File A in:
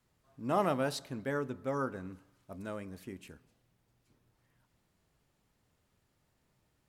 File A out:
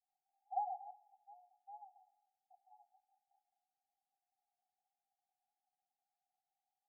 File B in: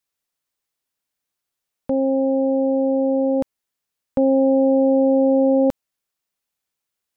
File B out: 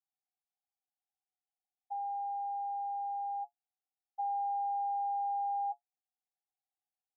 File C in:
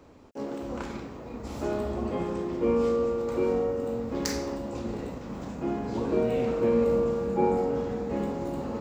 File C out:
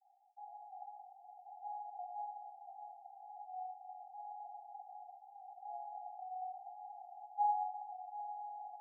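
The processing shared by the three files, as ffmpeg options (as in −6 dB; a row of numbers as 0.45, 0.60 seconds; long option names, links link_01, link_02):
-af "asuperpass=centerf=770:order=20:qfactor=5.8,volume=-1dB"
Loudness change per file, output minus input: −9.5, −17.5, −16.5 LU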